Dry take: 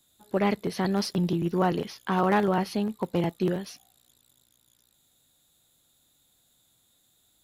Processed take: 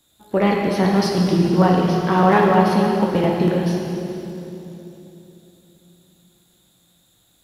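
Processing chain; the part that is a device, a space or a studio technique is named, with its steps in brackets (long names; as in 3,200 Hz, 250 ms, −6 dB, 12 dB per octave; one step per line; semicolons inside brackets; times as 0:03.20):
swimming-pool hall (convolution reverb RT60 3.2 s, pre-delay 4 ms, DRR −1.5 dB; high-shelf EQ 5,100 Hz −5 dB)
level +6 dB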